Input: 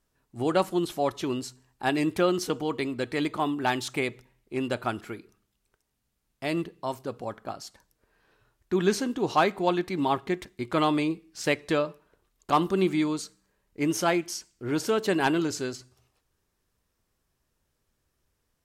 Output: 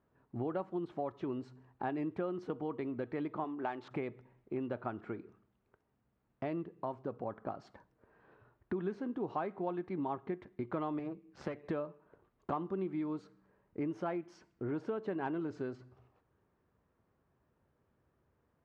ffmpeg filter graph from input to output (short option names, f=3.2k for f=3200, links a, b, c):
-filter_complex "[0:a]asettb=1/sr,asplit=3[a][b][c];[a]atrim=end=3.444[d];[b]atrim=start=3.44:end=3.91,asetpts=PTS-STARTPTS,afade=t=in:d=0.004:c=qsin,afade=t=out:st=0.466:d=0.004:c=qsin,bass=f=250:g=-11,treble=f=4k:g=3,adynamicsmooth=sensitivity=7.5:basefreq=1.9k[e];[c]atrim=start=3.906[f];[d][e]acrossfade=d=0.004:c1=hsin:c2=qsin[g];[g][f]acrossfade=d=0.004:c1=qsin:c2=hsin,asettb=1/sr,asplit=3[h][i][j];[h]atrim=end=10.994[k];[i]atrim=start=10.99:end=11.64,asetpts=PTS-STARTPTS,afade=t=in:d=0.004:c=qsin,afade=t=out:st=0.646:d=0.004:c=qsin,tremolo=f=140:d=0.571,aeval=exprs='clip(val(0),-1,0.015)':c=same[l];[j]atrim=start=11.636[m];[k][l]acrossfade=d=0.004:c1=hsin:c2=qsin[n];[n][m]acrossfade=d=0.004:c1=qsin:c2=hsin,lowpass=1.3k,acompressor=threshold=-42dB:ratio=4,highpass=84,volume=4.5dB"